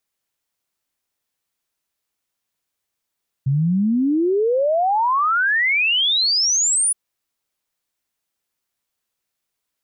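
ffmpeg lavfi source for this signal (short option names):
-f lavfi -i "aevalsrc='0.178*clip(min(t,3.47-t)/0.01,0,1)*sin(2*PI*130*3.47/log(10000/130)*(exp(log(10000/130)*t/3.47)-1))':d=3.47:s=44100"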